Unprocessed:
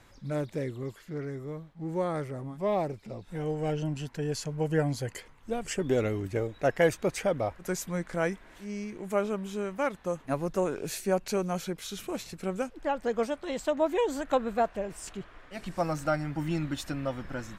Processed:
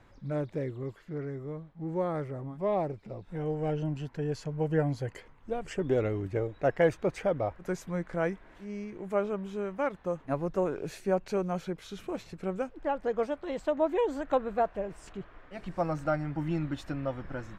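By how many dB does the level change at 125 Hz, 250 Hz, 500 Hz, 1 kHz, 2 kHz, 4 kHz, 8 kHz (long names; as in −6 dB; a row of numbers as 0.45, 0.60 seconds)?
−0.5 dB, −1.0 dB, −0.5 dB, −1.0 dB, −3.5 dB, −8.0 dB, below −10 dB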